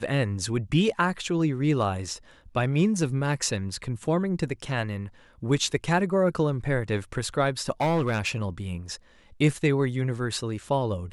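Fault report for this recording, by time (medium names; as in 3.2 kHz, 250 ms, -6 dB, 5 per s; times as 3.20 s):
7.81–8.36 s: clipped -20 dBFS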